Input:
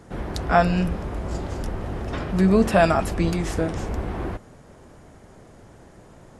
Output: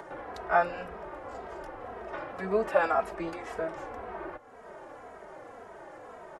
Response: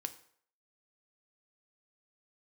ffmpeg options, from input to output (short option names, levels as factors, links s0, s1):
-filter_complex "[0:a]acompressor=mode=upward:threshold=0.0562:ratio=2.5,acrossover=split=420 2100:gain=0.0708 1 0.158[s0][s1][s2];[s0][s1][s2]amix=inputs=3:normalize=0,asplit=2[s3][s4];[s4]adelay=2.8,afreqshift=-1.9[s5];[s3][s5]amix=inputs=2:normalize=1"